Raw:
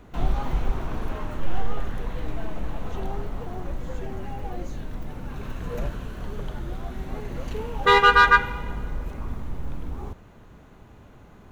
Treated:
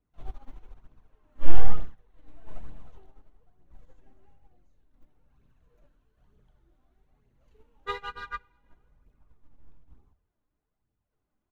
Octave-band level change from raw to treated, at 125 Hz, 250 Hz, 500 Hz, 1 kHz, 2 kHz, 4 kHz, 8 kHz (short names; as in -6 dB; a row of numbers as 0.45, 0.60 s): -9.0 dB, -15.5 dB, -18.0 dB, -19.5 dB, -22.5 dB, -19.5 dB, n/a